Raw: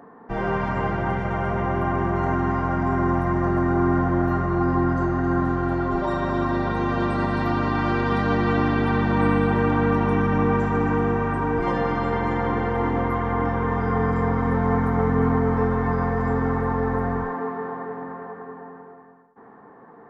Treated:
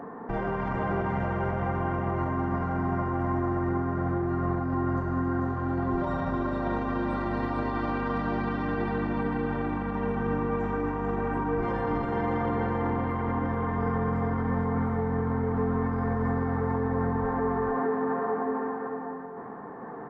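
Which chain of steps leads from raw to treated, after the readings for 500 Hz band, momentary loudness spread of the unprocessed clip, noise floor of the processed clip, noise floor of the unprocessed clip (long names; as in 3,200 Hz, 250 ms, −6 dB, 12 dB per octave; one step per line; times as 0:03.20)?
−5.5 dB, 6 LU, −39 dBFS, −47 dBFS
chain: high-shelf EQ 2,800 Hz −9 dB
downward compressor, threshold −28 dBFS, peak gain reduction 12 dB
brickwall limiter −29 dBFS, peak gain reduction 9.5 dB
single-tap delay 445 ms −4 dB
level +7 dB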